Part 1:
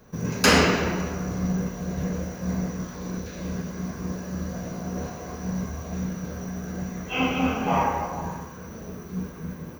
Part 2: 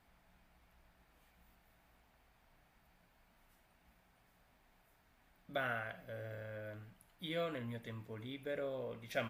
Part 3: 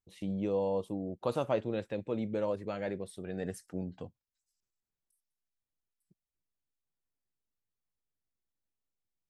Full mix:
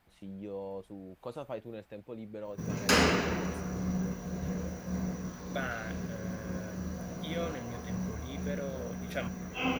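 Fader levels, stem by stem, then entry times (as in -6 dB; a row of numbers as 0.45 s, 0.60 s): -7.0 dB, +1.5 dB, -9.0 dB; 2.45 s, 0.00 s, 0.00 s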